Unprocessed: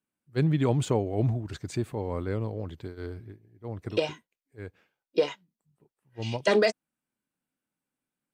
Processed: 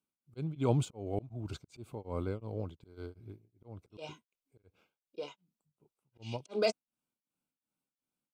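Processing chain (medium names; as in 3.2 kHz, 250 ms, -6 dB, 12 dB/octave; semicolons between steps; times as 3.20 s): slow attack 239 ms; Butterworth band-stop 1.8 kHz, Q 2.9; tremolo of two beating tones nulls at 2.7 Hz; trim -2.5 dB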